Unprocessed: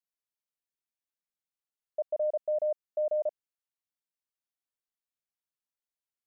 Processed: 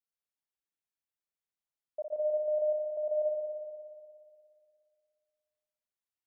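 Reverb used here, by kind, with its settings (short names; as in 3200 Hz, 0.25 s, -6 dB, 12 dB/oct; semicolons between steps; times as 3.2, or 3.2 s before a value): spring tank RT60 2.2 s, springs 59 ms, chirp 35 ms, DRR 1 dB; gain -5.5 dB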